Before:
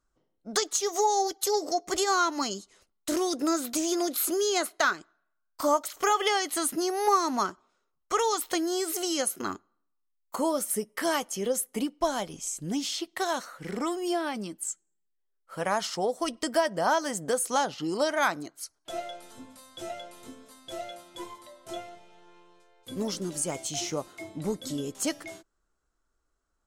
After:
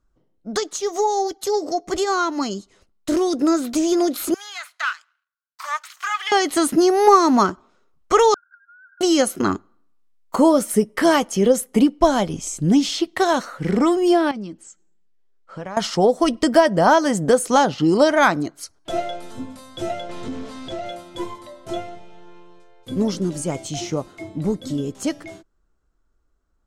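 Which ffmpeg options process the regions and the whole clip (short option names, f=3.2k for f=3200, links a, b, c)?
-filter_complex "[0:a]asettb=1/sr,asplit=3[a][b][c];[a]atrim=end=4.344[d];[b]atrim=start=4.34:end=6.32,asetpts=PTS-STARTPTS,afade=t=in:d=0.004:c=qsin,afade=t=out:st=1.976:d=0.004:c=qsin,aeval=exprs='if(lt(val(0),0),0.251*val(0),val(0))':c=same,highpass=f=1.2k:w=0.5412,highpass=f=1.2k:w=1.3066,acrossover=split=3300[e][f];[f]acompressor=threshold=-42dB:ratio=4:attack=1:release=60[g];[e][g]amix=inputs=2:normalize=0[h];[c]atrim=start=6.316[i];[d][h]acrossfade=d=0.004:c1=hsin:c2=qsin[j];[j][i]acrossfade=d=0.004:c1=qsin:c2=hsin,asettb=1/sr,asplit=3[k][l][m];[k]atrim=end=8.344[n];[l]atrim=start=8.34:end=9.01,asetpts=PTS-STARTPTS,afade=t=in:d=0.004:c=qsin,afade=t=out:st=0.666:d=0.004:c=qsin,asuperpass=centerf=1500:order=20:qfactor=6.4,acompressor=threshold=-56dB:ratio=6:attack=3.2:release=140:knee=1:detection=peak[o];[m]atrim=start=9.006[p];[n][o]acrossfade=d=0.004:c1=hsin:c2=qsin[q];[q][p]acrossfade=d=0.004:c1=qsin:c2=hsin,asettb=1/sr,asplit=3[r][s][t];[r]atrim=end=14.314[u];[s]atrim=start=14.31:end=15.77,asetpts=PTS-STARTPTS,afade=t=in:d=0.004:c=qsin,afade=t=out:st=1.456:d=0.004:c=qsin,lowpass=f=7.3k:w=0.5412,lowpass=f=7.3k:w=1.3066,acompressor=threshold=-52dB:ratio=2:attack=3.2:release=140:knee=1:detection=peak[v];[t]atrim=start=15.766[w];[u][v]acrossfade=d=0.004:c1=hsin:c2=qsin[x];[x][w]acrossfade=d=0.004:c1=qsin:c2=hsin,asettb=1/sr,asplit=3[y][z][aa];[y]atrim=end=20.094[ab];[z]atrim=start=20.09:end=20.86,asetpts=PTS-STARTPTS,afade=t=in:d=0.004:c=qsin,afade=t=out:st=0.766:d=0.004:c=qsin,aeval=exprs='val(0)+0.5*0.00631*sgn(val(0))':c=same,lowpass=6.3k,acompressor=threshold=-40dB:ratio=2:attack=3.2:release=140:knee=1:detection=peak[ac];[aa]atrim=start=20.856[ad];[ab][ac]acrossfade=d=0.004:c1=hsin:c2=qsin[ae];[ae][ad]acrossfade=d=0.004:c1=qsin:c2=hsin,lowshelf=f=360:g=10,dynaudnorm=f=300:g=31:m=8.5dB,highshelf=f=9.2k:g=-12,volume=2dB"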